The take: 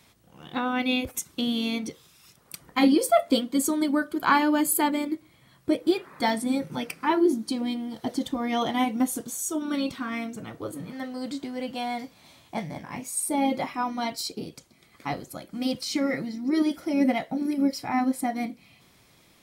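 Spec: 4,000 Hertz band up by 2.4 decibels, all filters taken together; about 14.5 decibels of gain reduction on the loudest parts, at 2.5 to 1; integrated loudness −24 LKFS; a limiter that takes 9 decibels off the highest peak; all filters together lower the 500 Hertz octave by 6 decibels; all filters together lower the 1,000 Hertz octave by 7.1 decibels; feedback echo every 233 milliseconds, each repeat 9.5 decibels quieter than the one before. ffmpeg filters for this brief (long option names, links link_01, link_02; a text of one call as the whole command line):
ffmpeg -i in.wav -af "equalizer=frequency=500:width_type=o:gain=-6.5,equalizer=frequency=1000:width_type=o:gain=-7,equalizer=frequency=4000:width_type=o:gain=3.5,acompressor=threshold=-41dB:ratio=2.5,alimiter=level_in=7.5dB:limit=-24dB:level=0:latency=1,volume=-7.5dB,aecho=1:1:233|466|699|932:0.335|0.111|0.0365|0.012,volume=17dB" out.wav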